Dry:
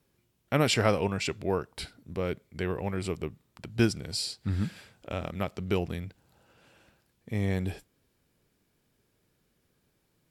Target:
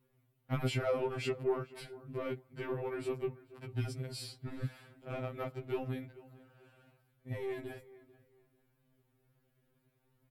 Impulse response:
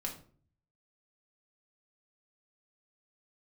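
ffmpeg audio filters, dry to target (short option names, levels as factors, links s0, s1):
-filter_complex "[0:a]alimiter=limit=0.1:level=0:latency=1:release=31,equalizer=f=6000:w=0.73:g=-13,asplit=2[s0][s1];[s1]adelay=441,lowpass=f=2300:p=1,volume=0.1,asplit=2[s2][s3];[s3]adelay=441,lowpass=f=2300:p=1,volume=0.25[s4];[s0][s2][s4]amix=inputs=3:normalize=0,asoftclip=type=tanh:threshold=0.0794,lowshelf=f=89:g=5.5,afftfilt=real='re*2.45*eq(mod(b,6),0)':imag='im*2.45*eq(mod(b,6),0)':win_size=2048:overlap=0.75"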